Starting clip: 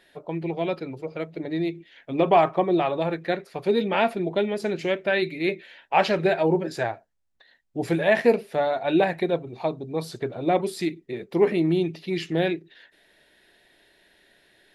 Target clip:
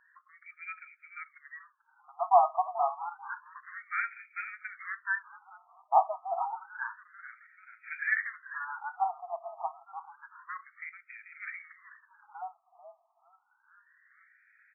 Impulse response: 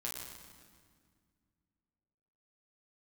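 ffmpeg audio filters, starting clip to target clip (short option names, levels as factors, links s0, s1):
-filter_complex "[0:a]asplit=2[s0][s1];[s1]asplit=5[s2][s3][s4][s5][s6];[s2]adelay=438,afreqshift=-89,volume=0.251[s7];[s3]adelay=876,afreqshift=-178,volume=0.12[s8];[s4]adelay=1314,afreqshift=-267,volume=0.0575[s9];[s5]adelay=1752,afreqshift=-356,volume=0.0279[s10];[s6]adelay=2190,afreqshift=-445,volume=0.0133[s11];[s7][s8][s9][s10][s11]amix=inputs=5:normalize=0[s12];[s0][s12]amix=inputs=2:normalize=0,afftfilt=real='re*between(b*sr/1024,900*pow(1800/900,0.5+0.5*sin(2*PI*0.29*pts/sr))/1.41,900*pow(1800/900,0.5+0.5*sin(2*PI*0.29*pts/sr))*1.41)':imag='im*between(b*sr/1024,900*pow(1800/900,0.5+0.5*sin(2*PI*0.29*pts/sr))/1.41,900*pow(1800/900,0.5+0.5*sin(2*PI*0.29*pts/sr))*1.41)':win_size=1024:overlap=0.75,volume=0.841"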